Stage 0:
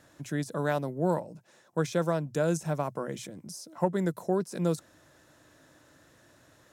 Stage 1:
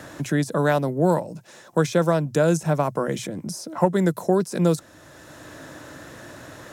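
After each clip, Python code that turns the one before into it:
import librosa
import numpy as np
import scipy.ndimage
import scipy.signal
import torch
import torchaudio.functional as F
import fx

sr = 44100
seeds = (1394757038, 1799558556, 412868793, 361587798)

y = fx.band_squash(x, sr, depth_pct=40)
y = F.gain(torch.from_numpy(y), 8.5).numpy()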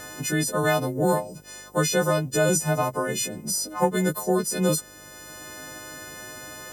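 y = fx.freq_snap(x, sr, grid_st=3)
y = fx.dmg_buzz(y, sr, base_hz=50.0, harmonics=11, level_db=-53.0, tilt_db=-1, odd_only=False)
y = F.gain(torch.from_numpy(y), -2.5).numpy()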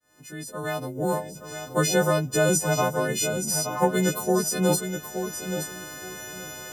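y = fx.fade_in_head(x, sr, length_s=1.7)
y = fx.echo_feedback(y, sr, ms=873, feedback_pct=22, wet_db=-8)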